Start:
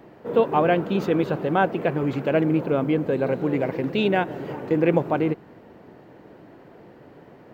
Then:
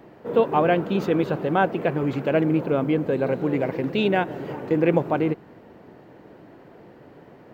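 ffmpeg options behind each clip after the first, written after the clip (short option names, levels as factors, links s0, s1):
-af anull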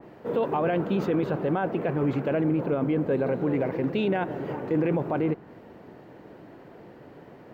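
-af "alimiter=limit=0.141:level=0:latency=1:release=10,adynamicequalizer=threshold=0.00447:dfrequency=2500:dqfactor=0.7:tfrequency=2500:tqfactor=0.7:attack=5:release=100:ratio=0.375:range=3.5:mode=cutabove:tftype=highshelf"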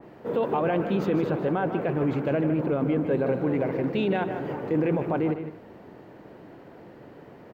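-af "aecho=1:1:154|225:0.335|0.112"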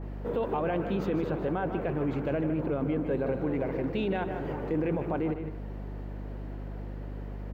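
-filter_complex "[0:a]aeval=exprs='val(0)+0.0158*(sin(2*PI*50*n/s)+sin(2*PI*2*50*n/s)/2+sin(2*PI*3*50*n/s)/3+sin(2*PI*4*50*n/s)/4+sin(2*PI*5*50*n/s)/5)':c=same,asplit=2[s0][s1];[s1]acompressor=threshold=0.0224:ratio=6,volume=1.33[s2];[s0][s2]amix=inputs=2:normalize=0,volume=0.422"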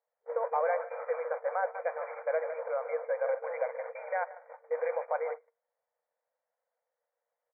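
-af "agate=range=0.0126:threshold=0.0316:ratio=16:detection=peak,afftfilt=real='re*between(b*sr/4096,460,2400)':imag='im*between(b*sr/4096,460,2400)':win_size=4096:overlap=0.75,volume=1.33"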